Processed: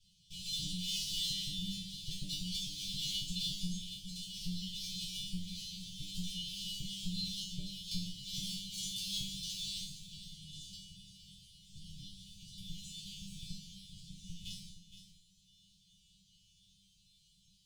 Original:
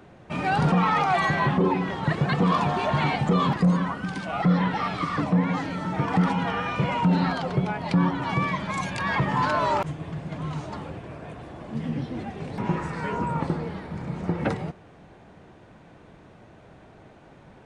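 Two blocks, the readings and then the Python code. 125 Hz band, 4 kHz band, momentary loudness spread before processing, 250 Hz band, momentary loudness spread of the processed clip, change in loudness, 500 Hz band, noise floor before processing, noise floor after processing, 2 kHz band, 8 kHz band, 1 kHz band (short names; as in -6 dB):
-21.5 dB, +1.5 dB, 12 LU, -21.0 dB, 16 LU, -14.5 dB, under -40 dB, -51 dBFS, -69 dBFS, -28.5 dB, +6.0 dB, under -40 dB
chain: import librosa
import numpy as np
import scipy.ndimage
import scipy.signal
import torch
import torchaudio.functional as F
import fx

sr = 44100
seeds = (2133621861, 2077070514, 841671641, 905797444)

y = fx.lower_of_two(x, sr, delay_ms=2.0)
y = scipy.signal.sosfilt(scipy.signal.cheby1(5, 1.0, [180.0, 3100.0], 'bandstop', fs=sr, output='sos'), y)
y = fx.cheby_harmonics(y, sr, harmonics=(4,), levels_db=(-29,), full_scale_db=-14.5)
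y = fx.high_shelf(y, sr, hz=2000.0, db=10.5)
y = fx.resonator_bank(y, sr, root=55, chord='fifth', decay_s=0.55)
y = y + 10.0 ** (-11.5 / 20.0) * np.pad(y, (int(466 * sr / 1000.0), 0))[:len(y)]
y = F.gain(torch.from_numpy(y), 10.5).numpy()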